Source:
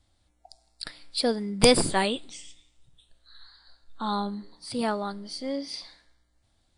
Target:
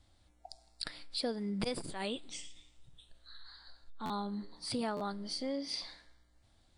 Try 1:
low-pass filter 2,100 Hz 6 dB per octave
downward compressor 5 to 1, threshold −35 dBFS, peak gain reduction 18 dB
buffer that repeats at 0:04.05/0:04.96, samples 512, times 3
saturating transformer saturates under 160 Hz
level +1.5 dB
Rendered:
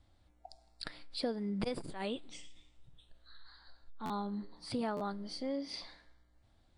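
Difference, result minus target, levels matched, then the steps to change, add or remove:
8,000 Hz band −7.0 dB
change: low-pass filter 7,800 Hz 6 dB per octave

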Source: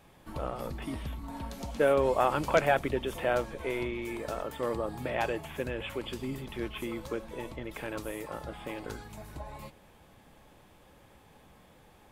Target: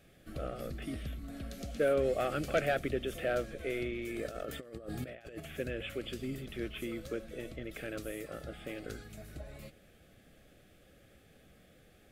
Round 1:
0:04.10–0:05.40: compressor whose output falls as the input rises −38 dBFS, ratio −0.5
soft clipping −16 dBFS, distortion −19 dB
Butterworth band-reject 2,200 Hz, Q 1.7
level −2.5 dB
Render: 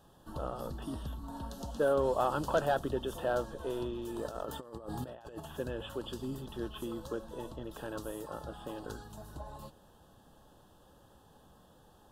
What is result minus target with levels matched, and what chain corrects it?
1,000 Hz band +5.5 dB
0:04.10–0:05.40: compressor whose output falls as the input rises −38 dBFS, ratio −0.5
soft clipping −16 dBFS, distortion −19 dB
Butterworth band-reject 950 Hz, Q 1.7
level −2.5 dB

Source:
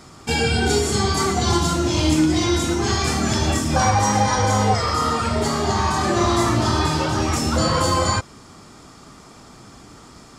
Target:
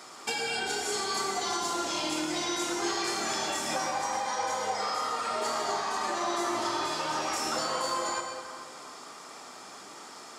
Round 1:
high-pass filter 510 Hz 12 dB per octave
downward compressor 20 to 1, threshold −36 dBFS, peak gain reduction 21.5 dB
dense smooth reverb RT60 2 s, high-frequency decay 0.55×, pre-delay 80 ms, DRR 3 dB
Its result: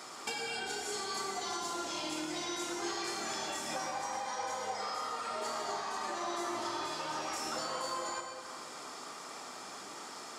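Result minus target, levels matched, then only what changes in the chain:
downward compressor: peak gain reduction +6.5 dB
change: downward compressor 20 to 1, threshold −29 dBFS, peak gain reduction 14.5 dB

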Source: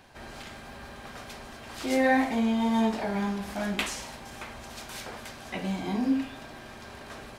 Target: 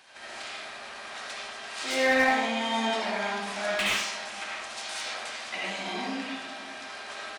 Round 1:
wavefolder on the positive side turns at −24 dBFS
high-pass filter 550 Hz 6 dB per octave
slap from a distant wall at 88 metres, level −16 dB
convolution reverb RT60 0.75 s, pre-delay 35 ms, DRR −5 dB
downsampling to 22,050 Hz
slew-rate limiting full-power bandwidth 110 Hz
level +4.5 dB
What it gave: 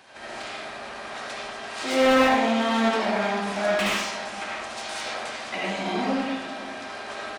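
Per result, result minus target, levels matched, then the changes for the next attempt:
wavefolder on the positive side: distortion +28 dB; 500 Hz band +2.5 dB
change: wavefolder on the positive side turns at −16 dBFS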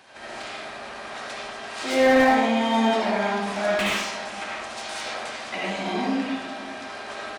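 500 Hz band +2.5 dB
change: high-pass filter 1,900 Hz 6 dB per octave

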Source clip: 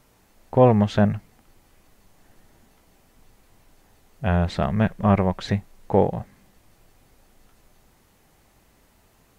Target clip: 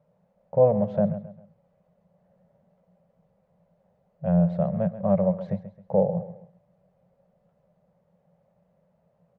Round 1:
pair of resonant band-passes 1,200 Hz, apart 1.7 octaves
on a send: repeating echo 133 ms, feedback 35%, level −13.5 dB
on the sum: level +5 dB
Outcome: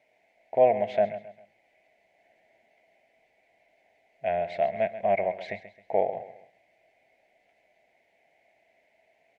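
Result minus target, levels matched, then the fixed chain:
250 Hz band −13.0 dB
pair of resonant band-passes 310 Hz, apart 1.7 octaves
on a send: repeating echo 133 ms, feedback 35%, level −13.5 dB
on the sum: level +5 dB

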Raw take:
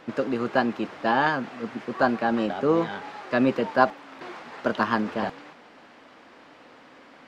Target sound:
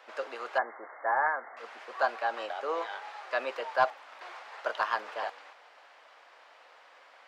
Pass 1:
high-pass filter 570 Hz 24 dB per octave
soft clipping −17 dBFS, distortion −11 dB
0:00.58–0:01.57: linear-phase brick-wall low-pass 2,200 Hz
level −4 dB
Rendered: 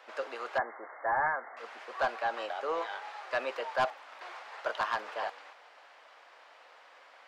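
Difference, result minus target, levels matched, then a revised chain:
soft clipping: distortion +12 dB
high-pass filter 570 Hz 24 dB per octave
soft clipping −6.5 dBFS, distortion −23 dB
0:00.58–0:01.57: linear-phase brick-wall low-pass 2,200 Hz
level −4 dB

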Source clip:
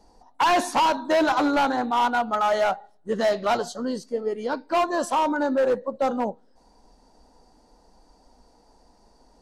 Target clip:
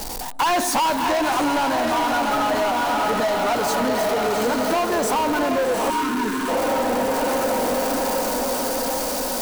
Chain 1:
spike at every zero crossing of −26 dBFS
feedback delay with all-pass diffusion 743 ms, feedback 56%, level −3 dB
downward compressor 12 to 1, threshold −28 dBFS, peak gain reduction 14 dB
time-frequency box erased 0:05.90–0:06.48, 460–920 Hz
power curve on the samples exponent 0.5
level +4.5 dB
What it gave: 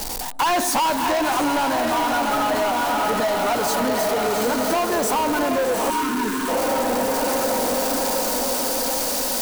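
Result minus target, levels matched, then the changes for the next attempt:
spike at every zero crossing: distortion +6 dB
change: spike at every zero crossing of −32.5 dBFS

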